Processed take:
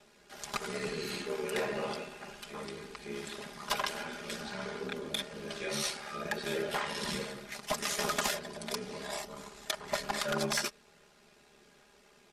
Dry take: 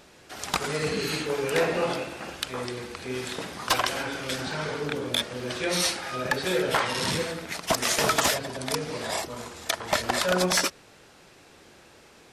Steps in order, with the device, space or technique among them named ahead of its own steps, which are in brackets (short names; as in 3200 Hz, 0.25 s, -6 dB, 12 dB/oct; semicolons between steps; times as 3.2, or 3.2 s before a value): ring-modulated robot voice (ring modulator 36 Hz; comb 4.9 ms, depth 81%); gain -8 dB